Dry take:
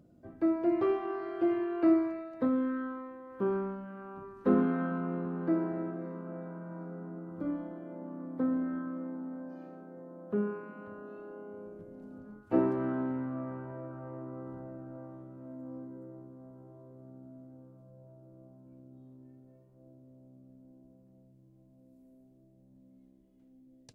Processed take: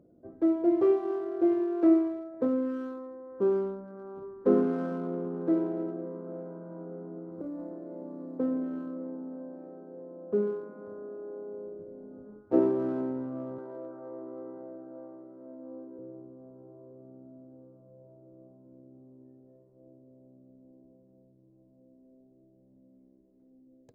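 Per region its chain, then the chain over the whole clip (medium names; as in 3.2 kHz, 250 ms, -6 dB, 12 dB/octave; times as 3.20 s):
7.31–8.38 s: compression 12:1, threshold -35 dBFS + modulation noise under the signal 25 dB
13.58–15.99 s: high-pass 260 Hz + treble shelf 2.4 kHz +9 dB
whole clip: local Wiener filter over 15 samples; peaking EQ 440 Hz +12 dB 1.3 oct; trim -5 dB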